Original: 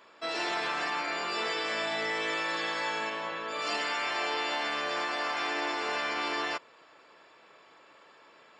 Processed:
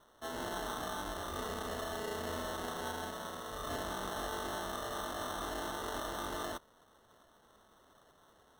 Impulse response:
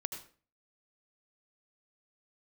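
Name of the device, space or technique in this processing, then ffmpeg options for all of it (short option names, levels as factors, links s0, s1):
crushed at another speed: -af "asetrate=35280,aresample=44100,acrusher=samples=23:mix=1:aa=0.000001,asetrate=55125,aresample=44100,volume=0.422"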